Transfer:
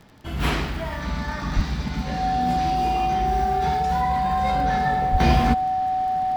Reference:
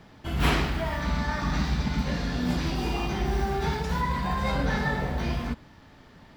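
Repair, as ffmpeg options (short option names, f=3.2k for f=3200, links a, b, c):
-filter_complex "[0:a]adeclick=t=4,bandreject=f=750:w=30,asplit=3[a][b][c];[a]afade=t=out:st=1.55:d=0.02[d];[b]highpass=f=140:w=0.5412,highpass=f=140:w=1.3066,afade=t=in:st=1.55:d=0.02,afade=t=out:st=1.67:d=0.02[e];[c]afade=t=in:st=1.67:d=0.02[f];[d][e][f]amix=inputs=3:normalize=0,asplit=3[g][h][i];[g]afade=t=out:st=5.11:d=0.02[j];[h]highpass=f=140:w=0.5412,highpass=f=140:w=1.3066,afade=t=in:st=5.11:d=0.02,afade=t=out:st=5.23:d=0.02[k];[i]afade=t=in:st=5.23:d=0.02[l];[j][k][l]amix=inputs=3:normalize=0,asetnsamples=n=441:p=0,asendcmd='5.2 volume volume -10.5dB',volume=0dB"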